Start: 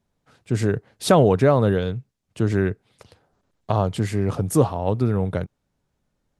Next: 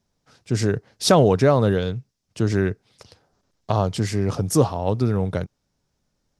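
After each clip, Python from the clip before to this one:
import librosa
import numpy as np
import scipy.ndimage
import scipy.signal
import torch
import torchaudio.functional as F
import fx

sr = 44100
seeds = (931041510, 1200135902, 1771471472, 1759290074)

y = fx.peak_eq(x, sr, hz=5400.0, db=10.5, octaves=0.71)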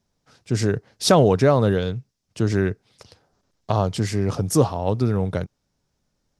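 y = x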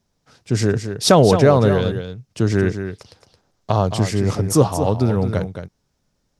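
y = x + 10.0 ** (-9.0 / 20.0) * np.pad(x, (int(220 * sr / 1000.0), 0))[:len(x)]
y = y * 10.0 ** (3.0 / 20.0)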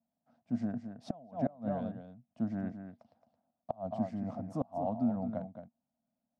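y = fx.double_bandpass(x, sr, hz=400.0, octaves=1.5)
y = fx.gate_flip(y, sr, shuts_db=-15.0, range_db=-27)
y = y * 10.0 ** (-5.0 / 20.0)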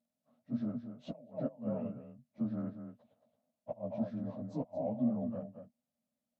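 y = fx.partial_stretch(x, sr, pct=90)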